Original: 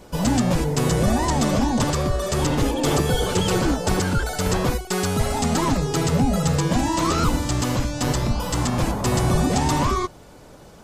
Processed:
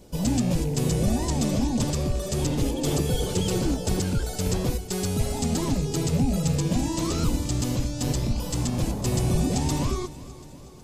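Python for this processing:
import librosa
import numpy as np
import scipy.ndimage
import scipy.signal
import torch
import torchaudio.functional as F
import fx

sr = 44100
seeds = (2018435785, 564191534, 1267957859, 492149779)

p1 = fx.rattle_buzz(x, sr, strikes_db=-20.0, level_db=-28.0)
p2 = fx.peak_eq(p1, sr, hz=1300.0, db=-12.0, octaves=1.9)
p3 = p2 + fx.echo_feedback(p2, sr, ms=368, feedback_pct=57, wet_db=-17.5, dry=0)
y = p3 * librosa.db_to_amplitude(-2.5)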